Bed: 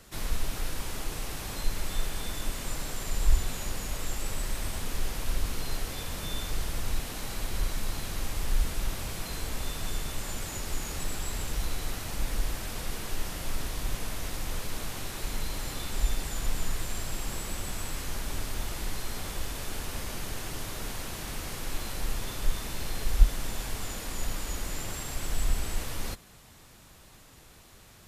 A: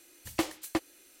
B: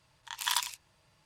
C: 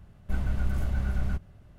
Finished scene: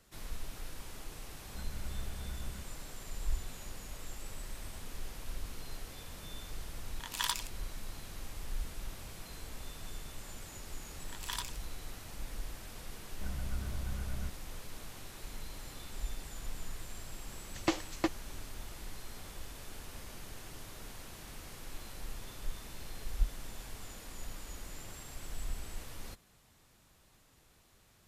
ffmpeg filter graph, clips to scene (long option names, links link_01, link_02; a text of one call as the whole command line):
ffmpeg -i bed.wav -i cue0.wav -i cue1.wav -i cue2.wav -filter_complex "[3:a]asplit=2[link_01][link_02];[2:a]asplit=2[link_03][link_04];[0:a]volume=-11.5dB[link_05];[link_04]acontrast=48[link_06];[1:a]aresample=16000,aresample=44100[link_07];[link_01]atrim=end=1.78,asetpts=PTS-STARTPTS,volume=-15.5dB,afade=type=in:duration=0.004:curve=hsin,afade=type=out:start_time=1.776:duration=0.004:curve=hsin,adelay=1250[link_08];[link_03]atrim=end=1.25,asetpts=PTS-STARTPTS,volume=-4dB,afade=type=in:duration=0.004:curve=hsin,afade=type=out:start_time=1.246:duration=0.004:curve=hsin,adelay=6730[link_09];[link_06]atrim=end=1.25,asetpts=PTS-STARTPTS,volume=-15.5dB,afade=type=in:duration=0.004:curve=hsin,afade=type=out:start_time=1.246:duration=0.004:curve=hsin,adelay=477162S[link_10];[link_02]atrim=end=1.78,asetpts=PTS-STARTPTS,volume=-10.5dB,afade=type=in:duration=0.004:curve=hsin,afade=type=out:start_time=1.776:duration=0.004:curve=hsin,adelay=12920[link_11];[link_07]atrim=end=1.2,asetpts=PTS-STARTPTS,volume=-1dB,afade=type=in:duration=0.004:curve=hsin,afade=type=out:start_time=1.196:duration=0.004:curve=hsin,adelay=17290[link_12];[link_05][link_08][link_09][link_10][link_11][link_12]amix=inputs=6:normalize=0" out.wav